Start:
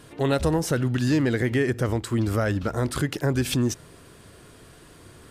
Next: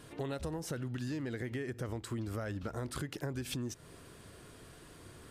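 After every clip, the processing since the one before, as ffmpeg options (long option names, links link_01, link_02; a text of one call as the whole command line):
ffmpeg -i in.wav -af "acompressor=threshold=-31dB:ratio=6,volume=-5dB" out.wav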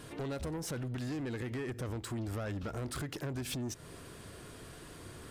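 ffmpeg -i in.wav -af "asoftclip=type=tanh:threshold=-38dB,volume=4.5dB" out.wav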